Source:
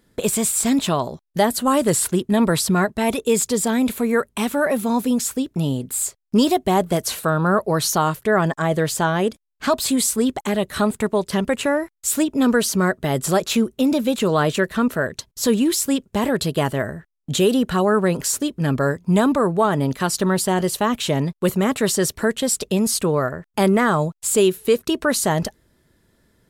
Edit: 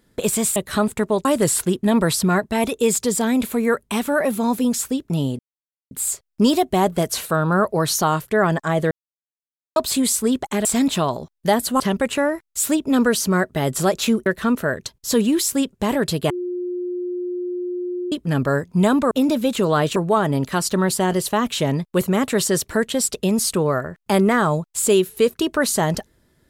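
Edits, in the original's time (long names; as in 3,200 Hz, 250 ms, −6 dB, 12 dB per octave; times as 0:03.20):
0:00.56–0:01.71: swap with 0:10.59–0:11.28
0:05.85: splice in silence 0.52 s
0:08.85–0:09.70: silence
0:13.74–0:14.59: move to 0:19.44
0:16.63–0:18.45: beep over 357 Hz −23 dBFS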